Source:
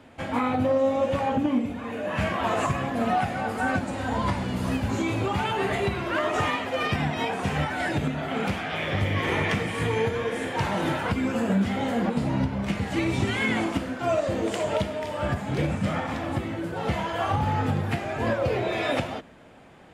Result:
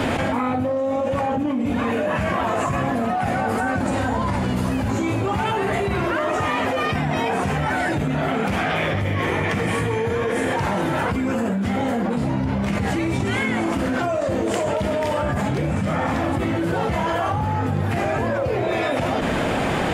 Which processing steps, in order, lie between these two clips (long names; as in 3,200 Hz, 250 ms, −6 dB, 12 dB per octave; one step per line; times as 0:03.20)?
dynamic equaliser 3,500 Hz, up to −5 dB, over −43 dBFS, Q 1
hard clipping −15.5 dBFS, distortion −43 dB
envelope flattener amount 100%
level −2 dB